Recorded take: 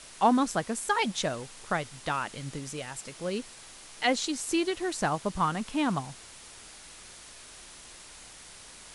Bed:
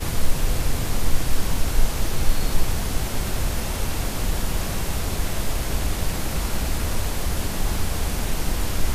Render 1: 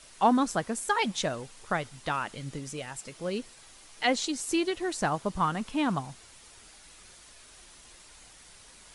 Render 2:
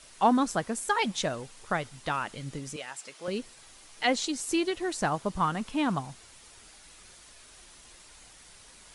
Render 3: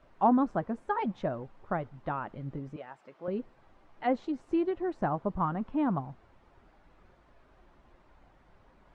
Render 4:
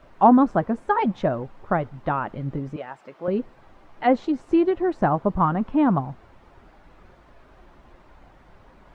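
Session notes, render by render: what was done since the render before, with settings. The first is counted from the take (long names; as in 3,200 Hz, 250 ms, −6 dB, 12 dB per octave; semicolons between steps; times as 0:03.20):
broadband denoise 6 dB, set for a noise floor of −49 dBFS
0:02.76–0:03.28: meter weighting curve A
low-pass filter 1,000 Hz 12 dB per octave; notch filter 460 Hz, Q 12
level +9.5 dB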